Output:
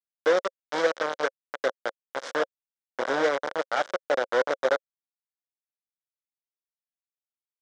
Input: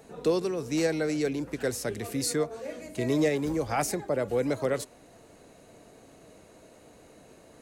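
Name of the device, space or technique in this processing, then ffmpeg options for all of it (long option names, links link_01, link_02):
hand-held game console: -af "acrusher=bits=3:mix=0:aa=0.000001,highpass=470,equalizer=frequency=540:width_type=q:width=4:gain=10,equalizer=frequency=1500:width_type=q:width=4:gain=6,equalizer=frequency=2600:width_type=q:width=4:gain=-10,equalizer=frequency=4400:width_type=q:width=4:gain=-8,lowpass=frequency=5100:width=0.5412,lowpass=frequency=5100:width=1.3066"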